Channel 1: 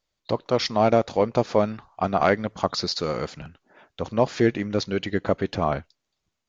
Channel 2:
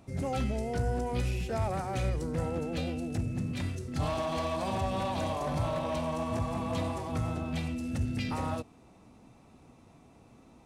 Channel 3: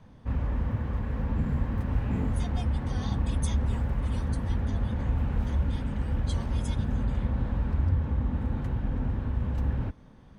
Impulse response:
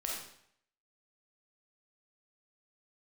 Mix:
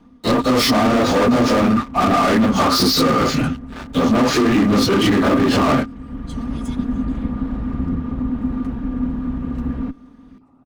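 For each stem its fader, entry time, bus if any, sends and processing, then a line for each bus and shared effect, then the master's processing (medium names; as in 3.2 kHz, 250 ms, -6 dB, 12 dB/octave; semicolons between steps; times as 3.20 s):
+1.0 dB, 0.00 s, no send, phase randomisation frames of 100 ms; peak limiter -15 dBFS, peak gain reduction 9.5 dB; waveshaping leveller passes 5
-17.0 dB, 2.10 s, no send, treble shelf 2.1 kHz -11.5 dB; compression 2.5:1, threshold -44 dBFS, peak gain reduction 12.5 dB; whisper effect
+2.5 dB, 0.00 s, no send, comb filter that takes the minimum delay 4.2 ms; auto duck -11 dB, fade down 0.35 s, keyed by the first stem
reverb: none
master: small resonant body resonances 260/1200 Hz, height 16 dB, ringing for 85 ms; peak limiter -8 dBFS, peak gain reduction 5 dB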